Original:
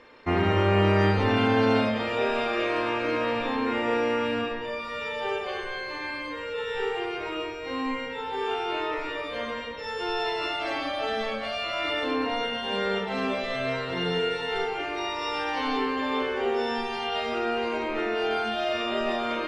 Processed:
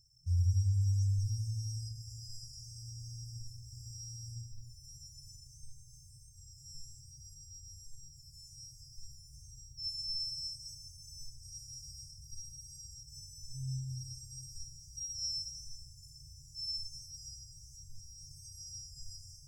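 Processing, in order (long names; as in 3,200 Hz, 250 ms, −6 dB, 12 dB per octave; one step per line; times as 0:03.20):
EQ curve with evenly spaced ripples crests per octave 2, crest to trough 11 dB
brick-wall band-stop 160–4,800 Hz
low-shelf EQ 180 Hz −7 dB
level +4 dB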